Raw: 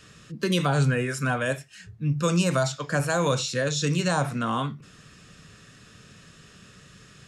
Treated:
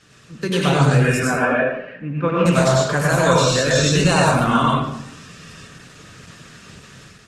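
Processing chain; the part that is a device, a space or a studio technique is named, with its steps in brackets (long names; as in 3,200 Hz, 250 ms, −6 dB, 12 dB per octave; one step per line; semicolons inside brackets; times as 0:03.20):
0:01.22–0:02.46: elliptic band-pass filter 190–2,300 Hz, stop band 70 dB
far-field microphone of a smart speaker (convolution reverb RT60 0.80 s, pre-delay 87 ms, DRR −3.5 dB; high-pass filter 98 Hz 6 dB per octave; automatic gain control gain up to 6.5 dB; Opus 16 kbit/s 48,000 Hz)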